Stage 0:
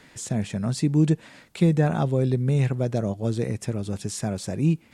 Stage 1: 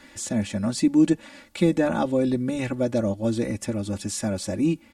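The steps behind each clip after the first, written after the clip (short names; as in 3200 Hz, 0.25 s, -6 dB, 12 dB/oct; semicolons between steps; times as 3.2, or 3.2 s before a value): comb 3.5 ms, depth 95%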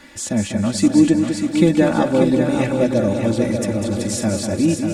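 multi-head echo 0.197 s, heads first and third, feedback 52%, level -7 dB; gain +5 dB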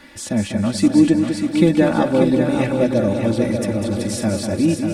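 bell 7000 Hz -7.5 dB 0.35 oct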